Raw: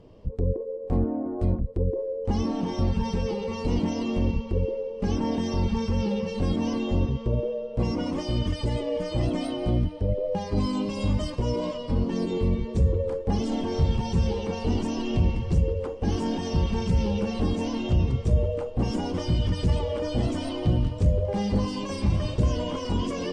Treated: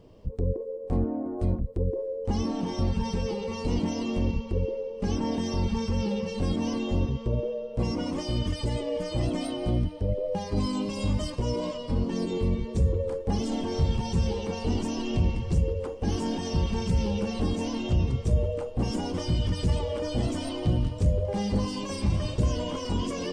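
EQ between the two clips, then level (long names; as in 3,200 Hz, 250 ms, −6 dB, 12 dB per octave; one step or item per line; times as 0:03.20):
high-shelf EQ 7,300 Hz +10.5 dB
−2.0 dB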